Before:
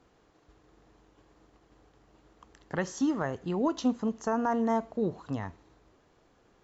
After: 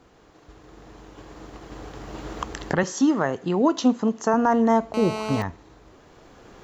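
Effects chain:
camcorder AGC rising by 7.7 dB per second
0:02.83–0:04.34: high-pass filter 160 Hz 12 dB per octave
0:04.94–0:05.42: phone interference −38 dBFS
level +8.5 dB

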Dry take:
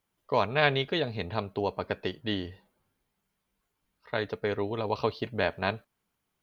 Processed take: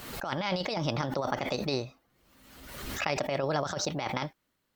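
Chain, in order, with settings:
compressor whose output falls as the input rises −30 dBFS, ratio −0.5
wrong playback speed 33 rpm record played at 45 rpm
background raised ahead of every attack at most 44 dB per second

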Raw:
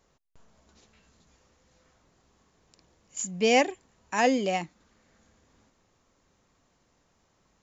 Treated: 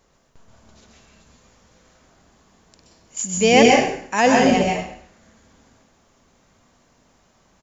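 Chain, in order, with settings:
echo with shifted repeats 97 ms, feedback 30%, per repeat −110 Hz, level −14 dB
dense smooth reverb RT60 0.57 s, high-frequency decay 0.95×, pre-delay 115 ms, DRR −0.5 dB
level +6.5 dB

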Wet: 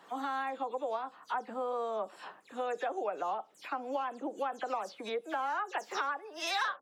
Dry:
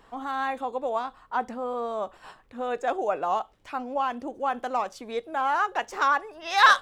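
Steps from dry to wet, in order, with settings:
every frequency bin delayed by itself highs early, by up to 106 ms
downward compressor 5 to 1, threshold −32 dBFS, peak gain reduction 17.5 dB
high-pass filter 190 Hz 24 dB per octave

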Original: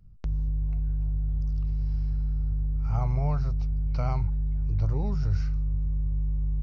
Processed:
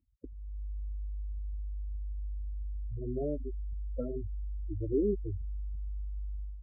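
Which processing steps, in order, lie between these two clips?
brickwall limiter −21 dBFS, peak gain reduction 6 dB
low shelf with overshoot 210 Hz −12 dB, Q 3
automatic gain control gain up to 11.5 dB
flat-topped bell 920 Hz −12.5 dB 1 octave
notch filter 610 Hz, Q 19
gate on every frequency bin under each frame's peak −10 dB strong
high-pass filter 70 Hz 12 dB per octave
phaser whose notches keep moving one way falling 0.54 Hz
level −1.5 dB

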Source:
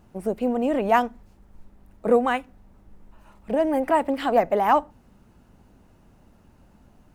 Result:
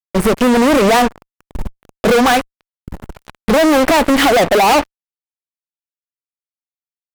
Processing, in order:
in parallel at +1 dB: downward compressor 20 to 1, threshold −30 dBFS, peak gain reduction 18 dB
on the sum: fuzz pedal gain 35 dB, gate −36 dBFS
level +4 dB

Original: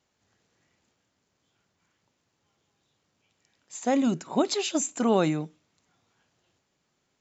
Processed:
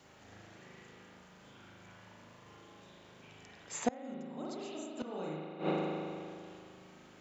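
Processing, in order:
spring reverb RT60 1.7 s, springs 38 ms, chirp 60 ms, DRR −6.5 dB
gate with flip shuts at −15 dBFS, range −27 dB
multiband upward and downward compressor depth 40%
level +3.5 dB

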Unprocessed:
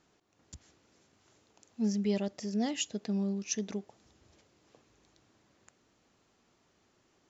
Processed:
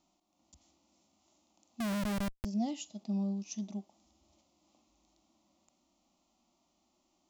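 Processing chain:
phaser with its sweep stopped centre 440 Hz, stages 6
harmonic and percussive parts rebalanced percussive −11 dB
parametric band 260 Hz −4 dB 0.44 octaves
0:01.80–0:02.45: comparator with hysteresis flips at −37 dBFS
level +1.5 dB

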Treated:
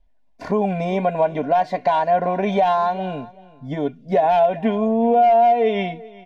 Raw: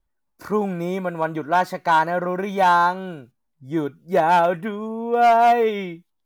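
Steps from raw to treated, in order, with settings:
low-pass filter 2,700 Hz 12 dB per octave
parametric band 390 Hz −3.5 dB 0.44 octaves
comb filter 2.9 ms, depth 61%
downward compressor 4 to 1, threshold −24 dBFS, peak gain reduction 13 dB
phaser with its sweep stopped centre 340 Hz, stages 6
repeating echo 385 ms, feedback 17%, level −21 dB
boost into a limiter +21 dB
level −8 dB

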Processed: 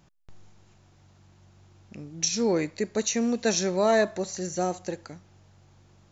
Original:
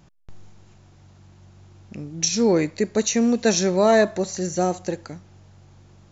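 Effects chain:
low-shelf EQ 440 Hz −3.5 dB
level −4 dB

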